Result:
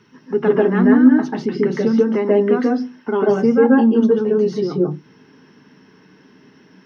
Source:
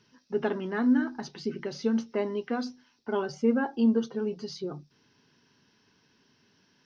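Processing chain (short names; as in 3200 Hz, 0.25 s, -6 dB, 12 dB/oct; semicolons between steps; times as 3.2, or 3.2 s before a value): in parallel at +1.5 dB: compressor, threshold -36 dBFS, peak gain reduction 16 dB; on the sum: reverb RT60 0.15 s, pre-delay 0.138 s, DRR -1.5 dB; gain -1.5 dB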